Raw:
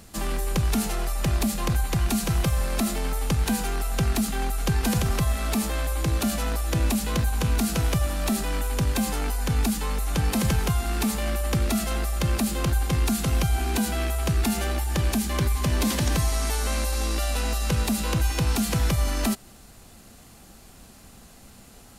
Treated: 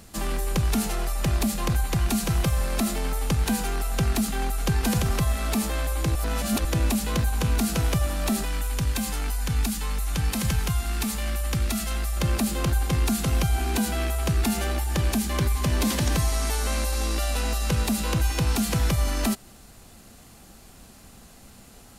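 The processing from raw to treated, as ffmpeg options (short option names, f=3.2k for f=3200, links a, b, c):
-filter_complex "[0:a]asettb=1/sr,asplit=3[a][b][c];[a]atrim=end=8.454[d];[b]atrim=start=8.45:end=12.17,asetpts=PTS-STARTPTS,afade=t=in:d=0.004:c=qsin,afade=t=out:st=3.716:d=0.004:c=qsin,equalizer=f=450:w=0.5:g=-7[e];[c]atrim=start=12.166[f];[d][e]acrossfade=d=0.004:c1=hsin:c2=qsin[g];[g][f]acrossfade=d=0.004:c1=qsin:c2=hsin,asplit=3[h][i][j];[h]atrim=end=6.152[k];[i]atrim=start=6.148:end=6.652,asetpts=PTS-STARTPTS,areverse[l];[j]atrim=start=6.648[m];[k][l]acrossfade=d=0.004:c1=hsin:c2=hsin[n];[n][m]acrossfade=d=0.004:c1=hsin:c2=hsin"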